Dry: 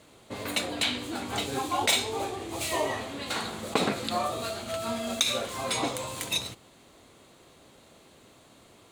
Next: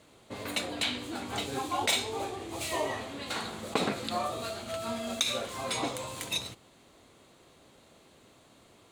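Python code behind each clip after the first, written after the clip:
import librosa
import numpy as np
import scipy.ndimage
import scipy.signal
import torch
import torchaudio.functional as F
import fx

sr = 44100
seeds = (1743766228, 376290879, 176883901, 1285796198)

y = fx.high_shelf(x, sr, hz=10000.0, db=-3.0)
y = F.gain(torch.from_numpy(y), -3.0).numpy()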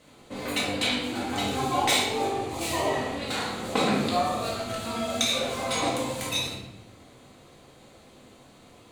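y = fx.room_shoebox(x, sr, seeds[0], volume_m3=350.0, walls='mixed', distance_m=2.0)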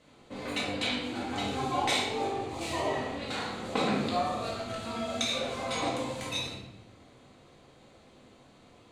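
y = fx.air_absorb(x, sr, metres=50.0)
y = F.gain(torch.from_numpy(y), -4.0).numpy()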